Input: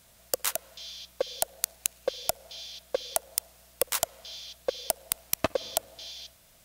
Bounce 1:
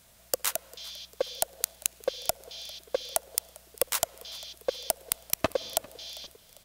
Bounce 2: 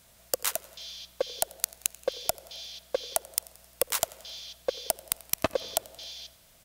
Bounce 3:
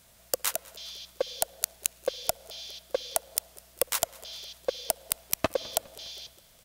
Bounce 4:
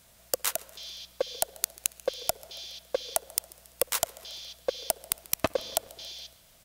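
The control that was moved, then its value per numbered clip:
frequency-shifting echo, time: 398, 88, 205, 139 ms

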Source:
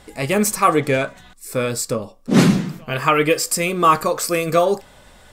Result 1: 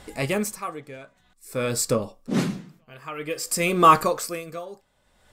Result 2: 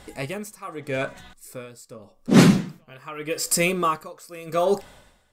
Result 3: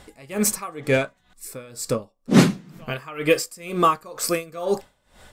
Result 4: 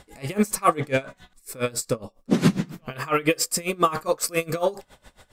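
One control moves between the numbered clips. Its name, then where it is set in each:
dB-linear tremolo, rate: 0.52, 0.83, 2.1, 7.3 Hz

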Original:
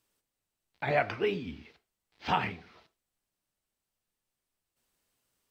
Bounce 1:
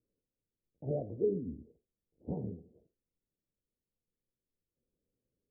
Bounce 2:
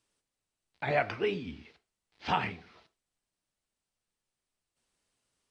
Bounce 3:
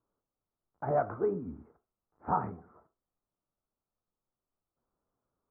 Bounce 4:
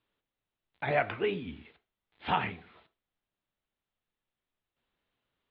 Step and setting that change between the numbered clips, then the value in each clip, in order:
elliptic low-pass, frequency: 520, 10000, 1300, 3700 Hz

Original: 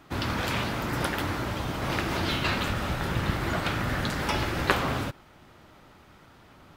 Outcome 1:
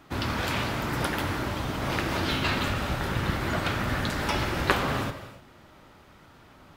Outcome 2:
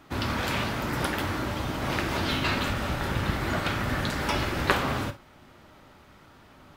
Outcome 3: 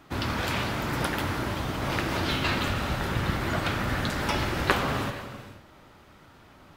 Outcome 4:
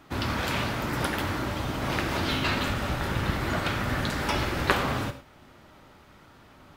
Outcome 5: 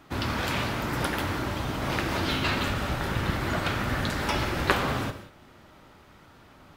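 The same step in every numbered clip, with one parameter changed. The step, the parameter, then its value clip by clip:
non-linear reverb, gate: 320, 80, 520, 130, 210 ms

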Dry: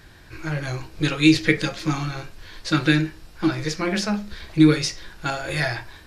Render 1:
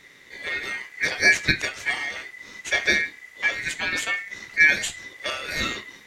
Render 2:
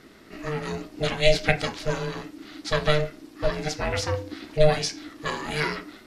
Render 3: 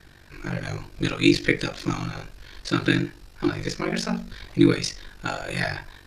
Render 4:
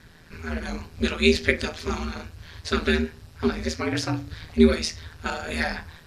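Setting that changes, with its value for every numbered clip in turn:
ring modulator, frequency: 2000, 300, 24, 81 Hz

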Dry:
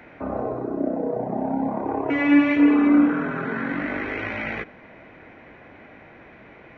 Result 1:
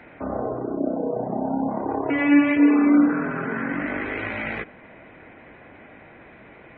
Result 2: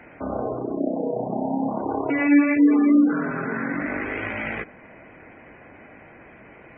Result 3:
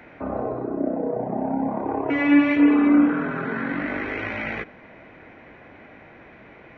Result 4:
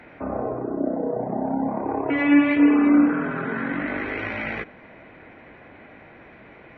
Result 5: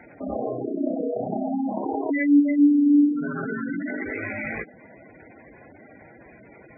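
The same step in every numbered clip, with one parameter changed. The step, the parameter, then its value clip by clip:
spectral gate, under each frame's peak: -35, -25, -60, -45, -10 dB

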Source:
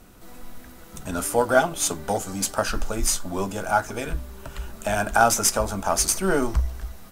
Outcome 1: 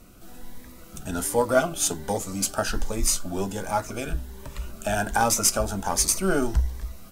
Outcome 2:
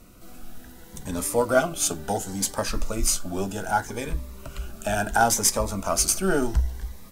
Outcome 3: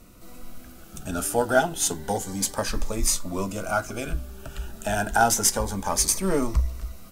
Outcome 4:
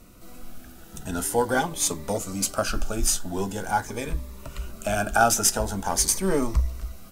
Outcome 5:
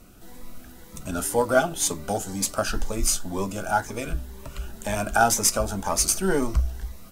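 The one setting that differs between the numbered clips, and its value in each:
cascading phaser, rate: 1.3, 0.69, 0.3, 0.45, 2 Hz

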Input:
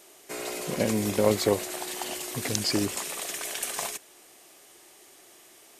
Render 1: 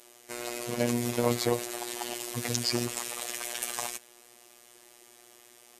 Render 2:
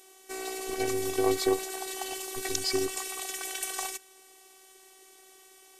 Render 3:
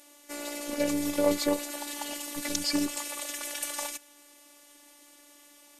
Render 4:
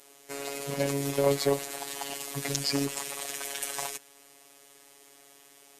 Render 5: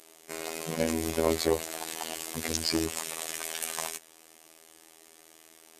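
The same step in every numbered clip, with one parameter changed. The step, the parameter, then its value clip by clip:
robotiser, frequency: 120, 380, 290, 140, 81 Hz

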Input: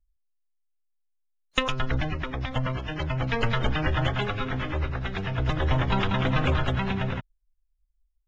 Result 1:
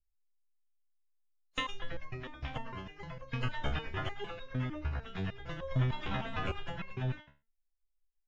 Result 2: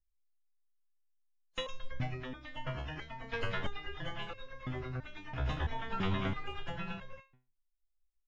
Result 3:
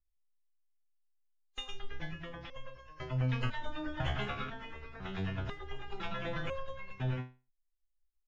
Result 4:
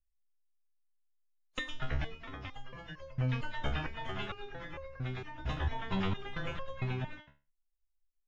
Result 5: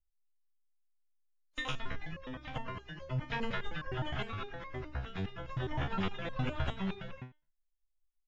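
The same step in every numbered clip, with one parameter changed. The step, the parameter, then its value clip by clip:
stepped resonator, rate: 6.6, 3, 2, 4.4, 9.7 Hz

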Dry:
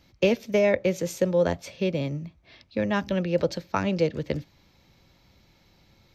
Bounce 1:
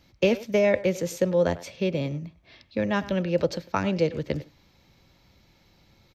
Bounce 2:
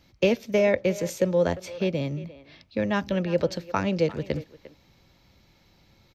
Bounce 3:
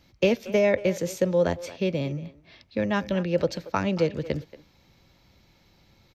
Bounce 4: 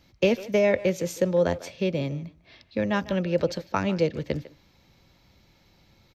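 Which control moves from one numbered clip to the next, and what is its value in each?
speakerphone echo, time: 0.1, 0.35, 0.23, 0.15 s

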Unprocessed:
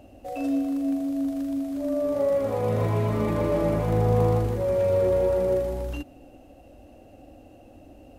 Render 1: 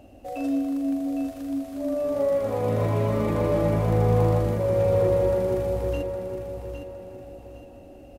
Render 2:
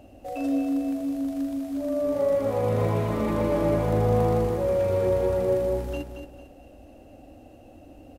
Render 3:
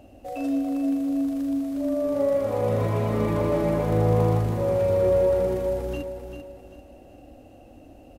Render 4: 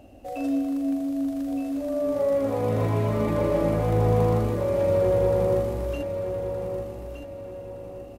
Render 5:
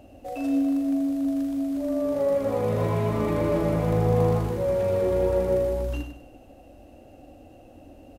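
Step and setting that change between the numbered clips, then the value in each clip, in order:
feedback echo, time: 811, 225, 393, 1218, 98 ms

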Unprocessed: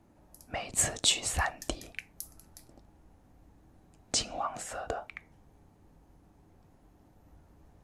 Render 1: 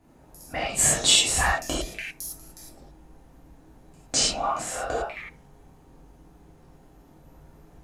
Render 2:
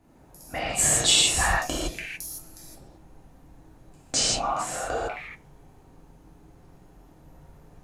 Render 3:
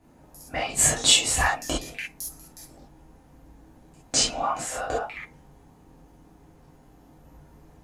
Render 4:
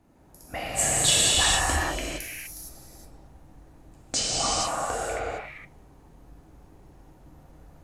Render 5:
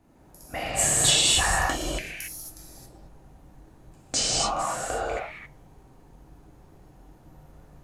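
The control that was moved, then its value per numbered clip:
non-linear reverb, gate: 130, 190, 90, 490, 300 ms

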